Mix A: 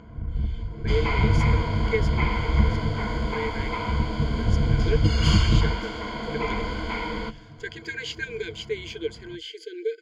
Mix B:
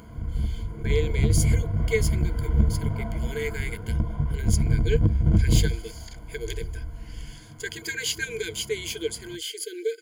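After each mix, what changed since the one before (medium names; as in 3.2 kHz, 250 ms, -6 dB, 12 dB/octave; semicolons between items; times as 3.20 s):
second sound: muted; master: remove distance through air 190 m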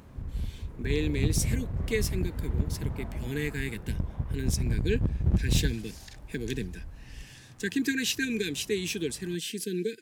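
speech: remove brick-wall FIR high-pass 330 Hz; background -4.0 dB; master: remove rippled EQ curve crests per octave 1.8, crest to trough 15 dB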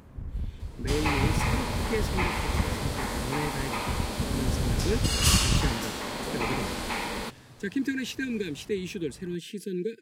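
speech: add treble shelf 2.5 kHz -11 dB; second sound: unmuted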